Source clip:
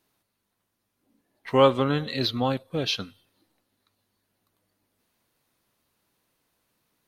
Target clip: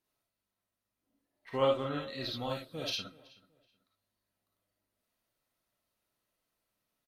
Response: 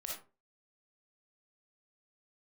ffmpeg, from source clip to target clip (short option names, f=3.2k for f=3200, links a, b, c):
-filter_complex "[0:a]asettb=1/sr,asplit=3[a][b][c];[a]atrim=end=2.344[d];[b]atrim=start=2.34:end=2.9,asetpts=PTS-STARTPTS,afade=t=in:d=0.004:c=qsin,afade=t=out:st=0.556:d=0.004:c=qsin,highshelf=f=4.2k:g=12[e];[c]atrim=start=2.896[f];[d][e]acrossfade=d=0.004:c1=hsin:c2=qsin[g];[g][f]acrossfade=d=0.004:c1=qsin:c2=hsin,asplit=2[h][i];[i]adelay=376,lowpass=f=3.2k:p=1,volume=-21dB,asplit=2[j][k];[k]adelay=376,lowpass=f=3.2k:p=1,volume=0.29[l];[h][j][l]amix=inputs=3:normalize=0[m];[1:a]atrim=start_sample=2205,atrim=end_sample=3528[n];[m][n]afir=irnorm=-1:irlink=0,volume=-8.5dB"